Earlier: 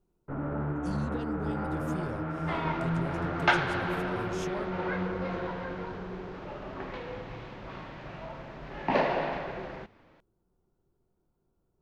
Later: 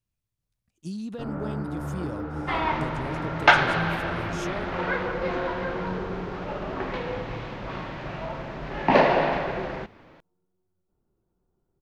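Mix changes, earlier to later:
speech +3.5 dB; first sound: entry +0.90 s; second sound +8.0 dB

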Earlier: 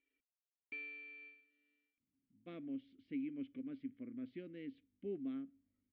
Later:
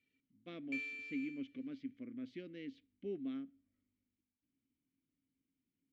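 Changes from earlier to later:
speech: entry -2.00 s; master: remove distance through air 330 m

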